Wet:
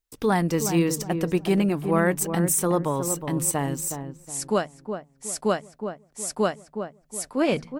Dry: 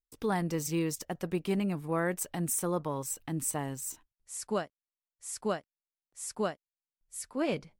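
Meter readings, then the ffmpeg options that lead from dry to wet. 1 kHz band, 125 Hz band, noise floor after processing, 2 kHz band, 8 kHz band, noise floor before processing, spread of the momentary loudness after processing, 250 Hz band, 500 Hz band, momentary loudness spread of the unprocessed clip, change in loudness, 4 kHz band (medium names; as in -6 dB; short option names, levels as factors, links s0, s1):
+9.0 dB, +9.0 dB, -62 dBFS, +8.5 dB, +8.5 dB, under -85 dBFS, 13 LU, +9.5 dB, +9.0 dB, 11 LU, +8.5 dB, +8.5 dB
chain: -filter_complex "[0:a]bandreject=f=78.29:t=h:w=4,bandreject=f=156.58:t=h:w=4,bandreject=f=234.87:t=h:w=4,asplit=2[s0][s1];[s1]adelay=367,lowpass=f=980:p=1,volume=0.447,asplit=2[s2][s3];[s3]adelay=367,lowpass=f=980:p=1,volume=0.36,asplit=2[s4][s5];[s5]adelay=367,lowpass=f=980:p=1,volume=0.36,asplit=2[s6][s7];[s7]adelay=367,lowpass=f=980:p=1,volume=0.36[s8];[s2][s4][s6][s8]amix=inputs=4:normalize=0[s9];[s0][s9]amix=inputs=2:normalize=0,volume=2.66"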